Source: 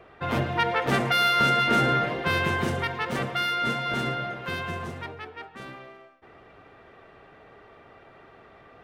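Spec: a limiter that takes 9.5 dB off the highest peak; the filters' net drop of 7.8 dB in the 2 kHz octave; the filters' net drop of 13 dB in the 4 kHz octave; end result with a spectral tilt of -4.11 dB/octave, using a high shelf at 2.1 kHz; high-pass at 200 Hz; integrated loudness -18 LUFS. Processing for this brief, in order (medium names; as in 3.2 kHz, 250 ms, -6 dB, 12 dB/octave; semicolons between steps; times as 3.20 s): high-pass 200 Hz; peaking EQ 2 kHz -4 dB; treble shelf 2.1 kHz -8.5 dB; peaking EQ 4 kHz -8 dB; trim +14.5 dB; peak limiter -7.5 dBFS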